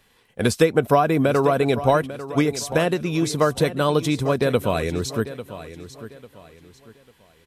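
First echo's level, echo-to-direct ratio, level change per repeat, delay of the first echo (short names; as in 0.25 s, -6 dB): -14.0 dB, -13.5 dB, -10.0 dB, 0.846 s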